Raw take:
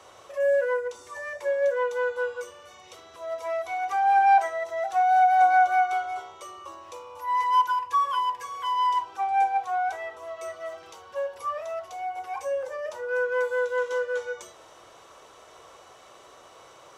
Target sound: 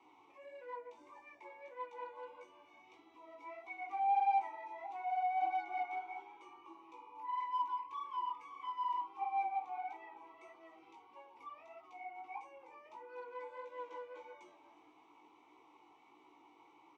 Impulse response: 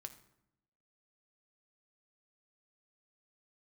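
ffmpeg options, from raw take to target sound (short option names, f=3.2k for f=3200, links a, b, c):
-filter_complex "[0:a]flanger=delay=15.5:depth=5.1:speed=1.6,acrossover=split=810[a][b];[b]asoftclip=type=tanh:threshold=-28.5dB[c];[a][c]amix=inputs=2:normalize=0,asplit=3[d][e][f];[d]bandpass=f=300:t=q:w=8,volume=0dB[g];[e]bandpass=f=870:t=q:w=8,volume=-6dB[h];[f]bandpass=f=2.24k:t=q:w=8,volume=-9dB[i];[g][h][i]amix=inputs=3:normalize=0,asplit=4[j][k][l][m];[k]adelay=363,afreqshift=88,volume=-18.5dB[n];[l]adelay=726,afreqshift=176,volume=-28.1dB[o];[m]adelay=1089,afreqshift=264,volume=-37.8dB[p];[j][n][o][p]amix=inputs=4:normalize=0,volume=4.5dB"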